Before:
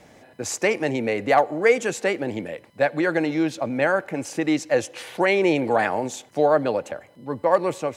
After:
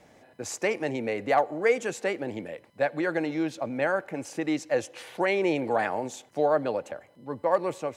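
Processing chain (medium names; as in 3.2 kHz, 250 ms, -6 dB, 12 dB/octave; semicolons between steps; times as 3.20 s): peaking EQ 720 Hz +2 dB 2.4 oct; trim -7 dB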